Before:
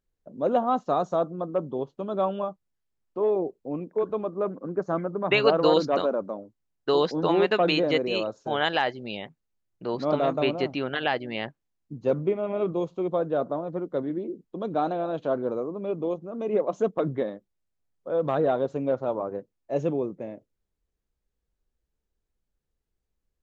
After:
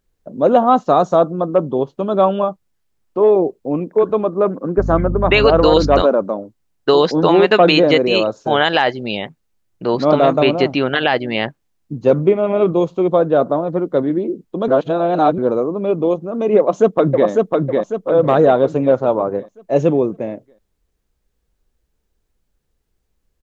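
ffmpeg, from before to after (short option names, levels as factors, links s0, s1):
-filter_complex "[0:a]asettb=1/sr,asplit=3[s0][s1][s2];[s0]atrim=end=4.784[s3];[s1]atrim=start=4.78:end=6.02,asetpts=PTS-STARTPTS,afade=t=in:d=0.004:c=qsin,afade=t=out:st=1.236:d=0.004:c=qsin,aeval=exprs='val(0)+0.0282*(sin(2*PI*50*n/s)+sin(2*PI*2*50*n/s)/2+sin(2*PI*3*50*n/s)/3+sin(2*PI*4*50*n/s)/4+sin(2*PI*5*50*n/s)/5)':c=same[s4];[s2]atrim=start=6.016[s5];[s3][s4]acrossfade=d=0.004:c1=hsin:c2=qsin[s6];[s6][s5]acrossfade=d=0.004:c1=qsin:c2=hsin,asplit=2[s7][s8];[s8]afade=t=in:st=16.58:d=0.01,afade=t=out:st=17.28:d=0.01,aecho=0:1:550|1100|1650|2200|2750|3300:0.749894|0.337452|0.151854|0.0683341|0.0307503|0.0138377[s9];[s7][s9]amix=inputs=2:normalize=0,asplit=3[s10][s11][s12];[s10]atrim=end=14.682[s13];[s11]atrim=start=14.678:end=15.382,asetpts=PTS-STARTPTS,areverse[s14];[s12]atrim=start=15.378[s15];[s13][s14]acrossfade=d=0.004:c1=hsin:c2=hsin[s16];[s16][s15]acrossfade=d=0.004:c1=hsin:c2=hsin,alimiter=level_in=4.47:limit=0.891:release=50:level=0:latency=1,volume=0.891"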